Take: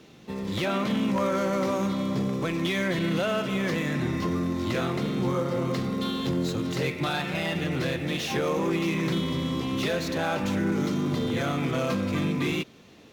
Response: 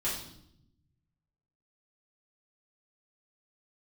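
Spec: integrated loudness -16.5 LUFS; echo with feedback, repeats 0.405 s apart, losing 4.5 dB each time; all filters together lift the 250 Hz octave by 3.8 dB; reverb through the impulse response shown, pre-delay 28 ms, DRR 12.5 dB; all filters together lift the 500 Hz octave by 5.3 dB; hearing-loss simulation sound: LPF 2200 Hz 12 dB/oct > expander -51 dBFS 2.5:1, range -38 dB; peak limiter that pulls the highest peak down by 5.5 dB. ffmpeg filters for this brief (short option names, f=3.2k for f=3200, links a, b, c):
-filter_complex "[0:a]equalizer=f=250:t=o:g=3.5,equalizer=f=500:t=o:g=5.5,alimiter=limit=-18dB:level=0:latency=1,aecho=1:1:405|810|1215|1620|2025|2430|2835|3240|3645:0.596|0.357|0.214|0.129|0.0772|0.0463|0.0278|0.0167|0.01,asplit=2[a][b];[1:a]atrim=start_sample=2205,adelay=28[c];[b][c]afir=irnorm=-1:irlink=0,volume=-18dB[d];[a][d]amix=inputs=2:normalize=0,lowpass=2.2k,agate=range=-38dB:threshold=-51dB:ratio=2.5,volume=8dB"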